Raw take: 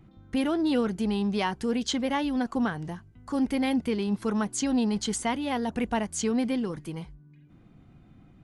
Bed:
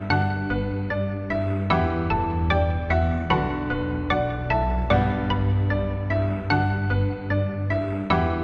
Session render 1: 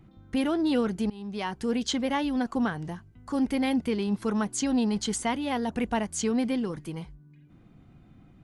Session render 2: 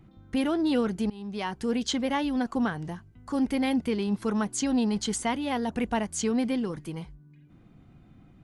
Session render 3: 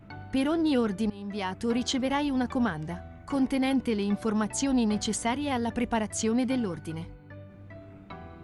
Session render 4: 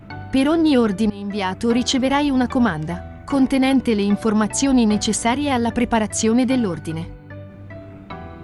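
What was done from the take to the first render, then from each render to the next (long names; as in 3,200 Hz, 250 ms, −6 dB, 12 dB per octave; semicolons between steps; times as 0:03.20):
0:01.10–0:01.70: fade in, from −21.5 dB
no processing that can be heard
mix in bed −22.5 dB
level +9.5 dB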